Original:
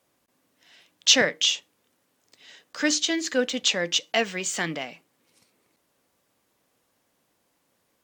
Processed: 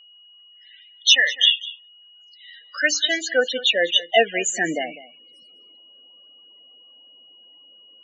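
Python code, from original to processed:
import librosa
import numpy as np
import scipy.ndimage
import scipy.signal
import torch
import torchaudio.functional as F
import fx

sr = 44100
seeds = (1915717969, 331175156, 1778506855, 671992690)

p1 = fx.spec_topn(x, sr, count=16)
p2 = fx.filter_sweep_highpass(p1, sr, from_hz=1500.0, to_hz=310.0, start_s=1.86, end_s=4.77, q=0.92)
p3 = p2 + fx.echo_single(p2, sr, ms=200, db=-17.5, dry=0)
p4 = p3 + 10.0 ** (-56.0 / 20.0) * np.sin(2.0 * np.pi * 2900.0 * np.arange(len(p3)) / sr)
y = F.gain(torch.from_numpy(p4), 8.5).numpy()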